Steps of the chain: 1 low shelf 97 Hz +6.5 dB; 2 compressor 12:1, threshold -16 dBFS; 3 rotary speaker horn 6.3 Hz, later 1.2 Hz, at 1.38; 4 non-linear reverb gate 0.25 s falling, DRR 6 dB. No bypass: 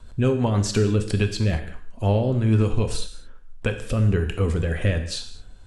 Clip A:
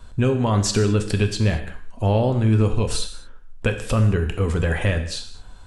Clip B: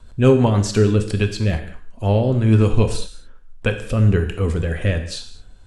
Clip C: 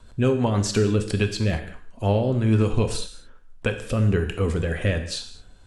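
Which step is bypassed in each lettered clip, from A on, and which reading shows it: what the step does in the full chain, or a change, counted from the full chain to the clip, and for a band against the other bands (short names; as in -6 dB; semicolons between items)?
3, 8 kHz band +2.0 dB; 2, mean gain reduction 2.0 dB; 1, 125 Hz band -2.5 dB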